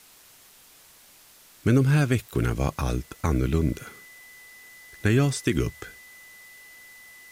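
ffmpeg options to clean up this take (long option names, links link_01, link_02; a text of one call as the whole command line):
ffmpeg -i in.wav -af "bandreject=frequency=2000:width=30,afwtdn=0.0025" out.wav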